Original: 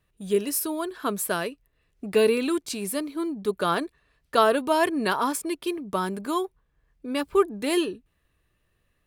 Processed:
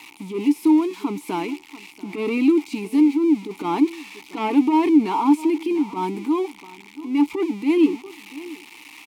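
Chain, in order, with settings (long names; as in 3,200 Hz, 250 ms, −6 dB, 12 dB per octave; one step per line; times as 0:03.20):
spike at every zero crossing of −20.5 dBFS
single-tap delay 687 ms −20.5 dB
in parallel at −4 dB: sine wavefolder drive 11 dB, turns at −5 dBFS
on the sum: transient designer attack −11 dB, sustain +2 dB
formant filter u
level +4.5 dB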